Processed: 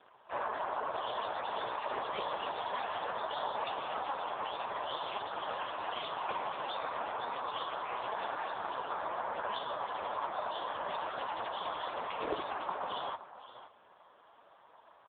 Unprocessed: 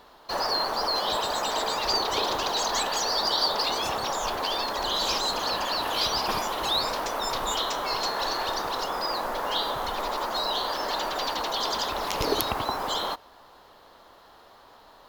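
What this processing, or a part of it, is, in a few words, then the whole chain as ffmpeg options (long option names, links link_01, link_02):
satellite phone: -af "highpass=360,lowpass=3300,aecho=1:1:519:0.188,volume=-3dB" -ar 8000 -c:a libopencore_amrnb -b:a 4750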